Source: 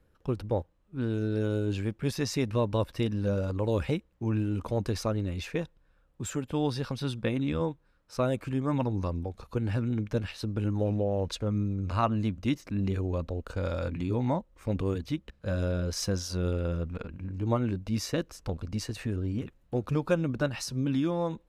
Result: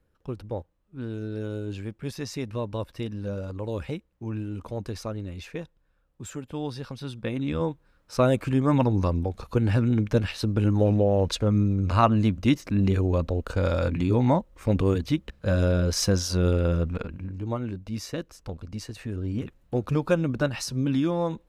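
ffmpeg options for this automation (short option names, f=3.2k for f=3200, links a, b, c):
-af "volume=13dB,afade=t=in:st=7.12:d=1.14:silence=0.298538,afade=t=out:st=16.88:d=0.6:silence=0.334965,afade=t=in:st=19.03:d=0.41:silence=0.501187"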